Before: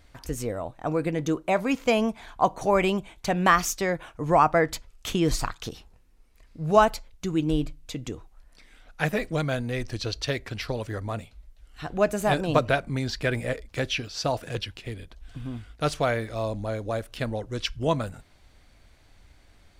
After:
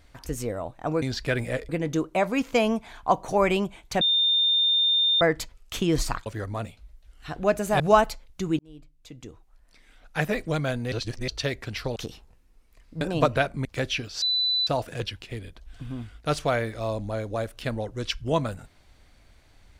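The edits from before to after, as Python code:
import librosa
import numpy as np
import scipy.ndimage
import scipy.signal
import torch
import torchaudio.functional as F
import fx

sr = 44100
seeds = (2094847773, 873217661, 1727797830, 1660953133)

y = fx.edit(x, sr, fx.bleep(start_s=3.34, length_s=1.2, hz=3620.0, db=-18.5),
    fx.swap(start_s=5.59, length_s=1.05, other_s=10.8, other_length_s=1.54),
    fx.fade_in_span(start_s=7.43, length_s=1.68),
    fx.reverse_span(start_s=9.76, length_s=0.36),
    fx.move(start_s=12.98, length_s=0.67, to_s=1.02),
    fx.insert_tone(at_s=14.22, length_s=0.45, hz=3990.0, db=-21.0), tone=tone)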